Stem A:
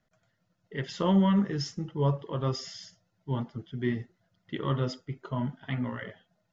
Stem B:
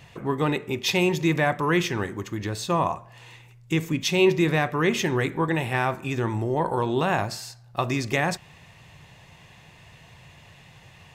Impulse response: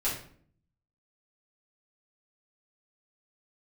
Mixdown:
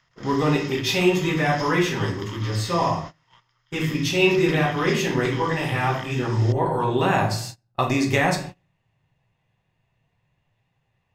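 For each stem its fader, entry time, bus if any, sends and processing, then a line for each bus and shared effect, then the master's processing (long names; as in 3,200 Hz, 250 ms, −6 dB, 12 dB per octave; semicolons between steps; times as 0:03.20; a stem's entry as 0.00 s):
+1.0 dB, 0.00 s, no send, compressor on every frequency bin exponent 0.4; Bessel high-pass filter 1,900 Hz, order 4; multiband upward and downward compressor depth 100%
−2.0 dB, 0.00 s, send −4 dB, automatic ducking −16 dB, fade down 1.70 s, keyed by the first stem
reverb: on, RT60 0.55 s, pre-delay 4 ms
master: noise gate −33 dBFS, range −24 dB; one half of a high-frequency compander decoder only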